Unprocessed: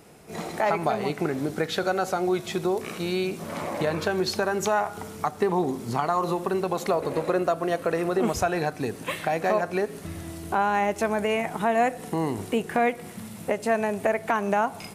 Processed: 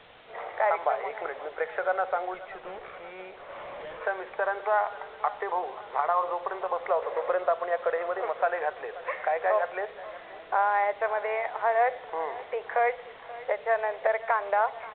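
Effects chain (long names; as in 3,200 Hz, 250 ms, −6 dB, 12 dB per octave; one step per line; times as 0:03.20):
elliptic band-pass filter 500–2,100 Hz, stop band 40 dB
bit-depth reduction 8 bits, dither triangular
0:02.34–0:04.01: tube saturation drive 38 dB, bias 0.45
on a send: repeating echo 531 ms, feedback 57%, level −17.5 dB
on the sum: mu-law 64 kbit/s 8,000 Hz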